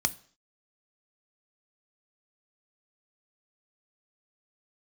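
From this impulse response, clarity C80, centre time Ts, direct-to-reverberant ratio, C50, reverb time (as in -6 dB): 24.0 dB, 2 ms, 12.0 dB, 21.0 dB, 0.50 s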